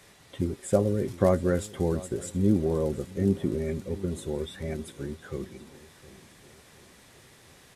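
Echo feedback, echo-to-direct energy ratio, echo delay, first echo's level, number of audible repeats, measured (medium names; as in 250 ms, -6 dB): 53%, -17.5 dB, 715 ms, -19.0 dB, 3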